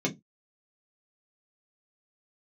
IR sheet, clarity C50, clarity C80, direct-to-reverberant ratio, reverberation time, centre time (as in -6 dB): 18.5 dB, 31.0 dB, -2.0 dB, 0.15 s, 11 ms